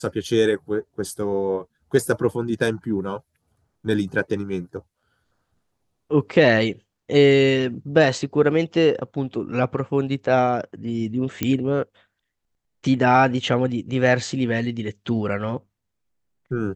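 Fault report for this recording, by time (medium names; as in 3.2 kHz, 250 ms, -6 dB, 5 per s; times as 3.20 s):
11.43 s: pop -8 dBFS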